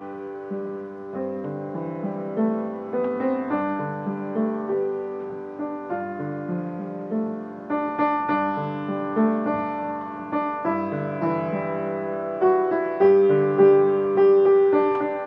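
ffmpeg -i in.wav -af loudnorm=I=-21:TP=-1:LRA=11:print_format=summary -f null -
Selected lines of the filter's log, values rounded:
Input Integrated:    -22.1 LUFS
Input True Peak:      -5.9 dBTP
Input LRA:            10.0 LU
Input Threshold:     -32.3 LUFS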